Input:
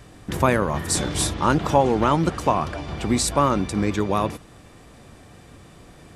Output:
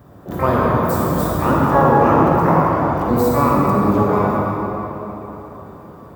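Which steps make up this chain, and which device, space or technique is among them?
shimmer-style reverb (pitch-shifted copies added +12 semitones −5 dB; convolution reverb RT60 3.8 s, pre-delay 34 ms, DRR −4.5 dB)
high-pass filter 70 Hz
flat-topped bell 4,500 Hz −15.5 dB 2.8 octaves

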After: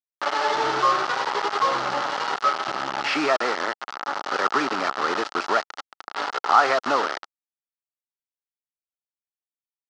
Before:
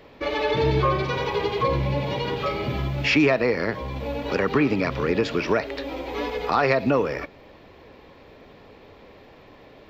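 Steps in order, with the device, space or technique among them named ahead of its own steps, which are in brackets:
hand-held game console (bit reduction 4 bits; loudspeaker in its box 440–5,100 Hz, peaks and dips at 480 Hz −6 dB, 820 Hz +6 dB, 1,300 Hz +10 dB, 2,400 Hz −8 dB, 3,600 Hz −4 dB)

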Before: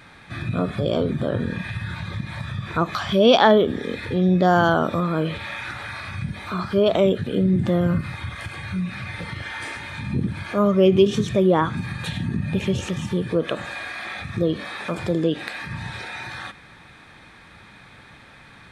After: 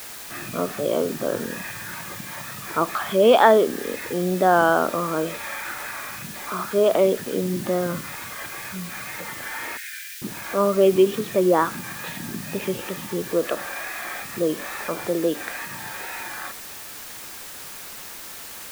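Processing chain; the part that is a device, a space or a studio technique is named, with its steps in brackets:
wax cylinder (band-pass filter 320–2,200 Hz; tape wow and flutter; white noise bed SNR 14 dB)
0:09.77–0:10.22: Butterworth high-pass 1,500 Hz 72 dB per octave
level +1.5 dB

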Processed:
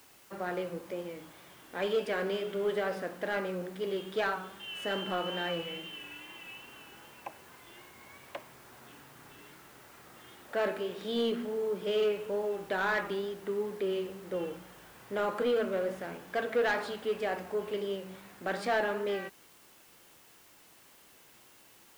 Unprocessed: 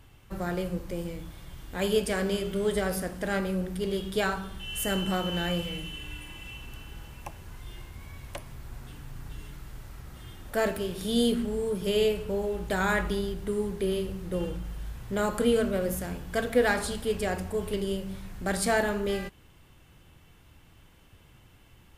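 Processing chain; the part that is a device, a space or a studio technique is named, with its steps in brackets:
tape answering machine (band-pass filter 340–2,900 Hz; soft clipping −22 dBFS, distortion −15 dB; tape wow and flutter; white noise bed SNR 25 dB)

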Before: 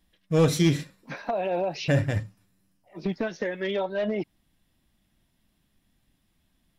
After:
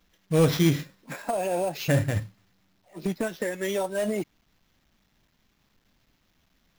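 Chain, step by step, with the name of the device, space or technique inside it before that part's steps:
early companding sampler (sample-rate reduction 9,200 Hz, jitter 0%; log-companded quantiser 6 bits)

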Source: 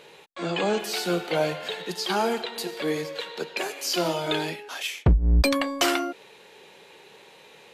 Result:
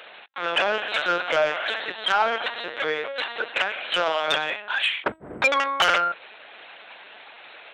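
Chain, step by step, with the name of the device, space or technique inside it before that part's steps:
talking toy (linear-prediction vocoder at 8 kHz pitch kept; high-pass filter 700 Hz 12 dB per octave; parametric band 1,500 Hz +6 dB 0.54 octaves; soft clipping −19.5 dBFS, distortion −15 dB)
level +8.5 dB

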